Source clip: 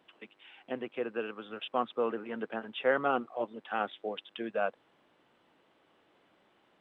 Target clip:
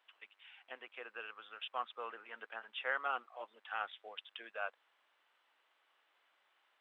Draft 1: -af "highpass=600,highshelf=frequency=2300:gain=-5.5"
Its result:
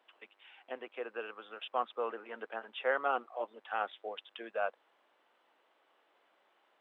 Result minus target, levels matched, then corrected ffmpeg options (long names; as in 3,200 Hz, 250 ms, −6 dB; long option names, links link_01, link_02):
500 Hz band +6.0 dB
-af "highpass=1300,highshelf=frequency=2300:gain=-5.5"